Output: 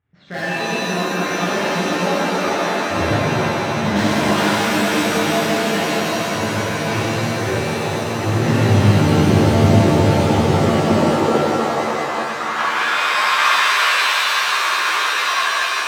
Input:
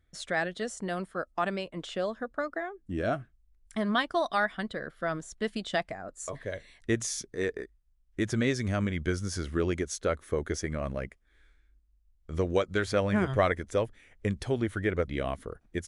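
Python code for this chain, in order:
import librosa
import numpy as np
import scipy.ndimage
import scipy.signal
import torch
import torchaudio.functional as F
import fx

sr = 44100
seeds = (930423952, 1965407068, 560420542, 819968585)

p1 = fx.law_mismatch(x, sr, coded='A')
p2 = scipy.signal.sosfilt(scipy.signal.butter(4, 2600.0, 'lowpass', fs=sr, output='sos'), p1)
p3 = fx.notch(p2, sr, hz=520.0, q=16.0)
p4 = fx.level_steps(p3, sr, step_db=13)
p5 = p3 + F.gain(torch.from_numpy(p4), -1.5).numpy()
p6 = 10.0 ** (-21.5 / 20.0) * (np.abs((p5 / 10.0 ** (-21.5 / 20.0) + 3.0) % 4.0 - 2.0) - 1.0)
p7 = p6 + fx.echo_swing(p6, sr, ms=1205, ratio=3, feedback_pct=37, wet_db=-6.5, dry=0)
p8 = fx.filter_sweep_highpass(p7, sr, from_hz=110.0, to_hz=1100.0, start_s=10.36, end_s=11.84, q=4.7)
p9 = fx.rev_shimmer(p8, sr, seeds[0], rt60_s=3.3, semitones=7, shimmer_db=-2, drr_db=-11.0)
y = F.gain(torch.from_numpy(p9), -2.5).numpy()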